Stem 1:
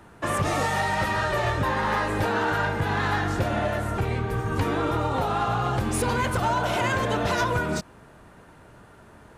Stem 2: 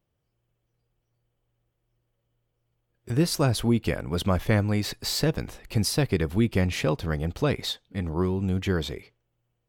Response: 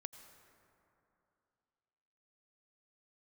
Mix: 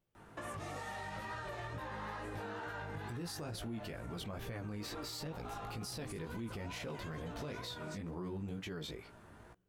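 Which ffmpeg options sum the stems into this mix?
-filter_complex "[0:a]acompressor=threshold=-32dB:ratio=5,adelay=150,volume=-4.5dB[link_01];[1:a]equalizer=frequency=96:width_type=o:width=0.82:gain=-4,volume=-2dB,asplit=2[link_02][link_03];[link_03]volume=-22dB[link_04];[2:a]atrim=start_sample=2205[link_05];[link_04][link_05]afir=irnorm=-1:irlink=0[link_06];[link_01][link_02][link_06]amix=inputs=3:normalize=0,flanger=delay=16.5:depth=3.3:speed=2.2,alimiter=level_in=11dB:limit=-24dB:level=0:latency=1:release=119,volume=-11dB"

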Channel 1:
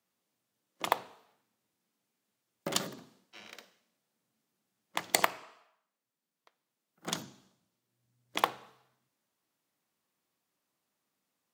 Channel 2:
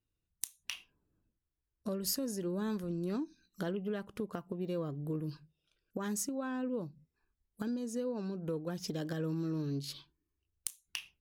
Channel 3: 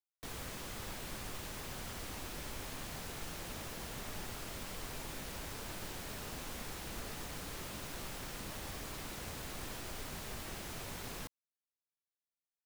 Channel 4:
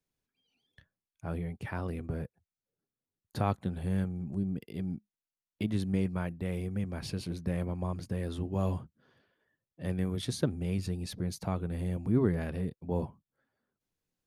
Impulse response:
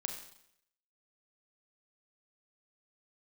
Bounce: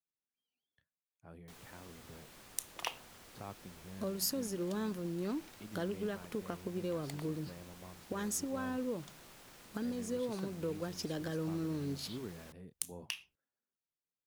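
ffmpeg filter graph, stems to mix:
-filter_complex "[0:a]adelay=1950,volume=-11.5dB[link_01];[1:a]adelay=2150,volume=0dB[link_02];[2:a]adelay=1250,volume=-11dB[link_03];[3:a]volume=-15.5dB,asplit=2[link_04][link_05];[link_05]apad=whole_len=598962[link_06];[link_01][link_06]sidechaincompress=threshold=-59dB:ratio=8:attack=16:release=696[link_07];[link_07][link_02][link_03][link_04]amix=inputs=4:normalize=0,lowshelf=frequency=110:gain=-10"

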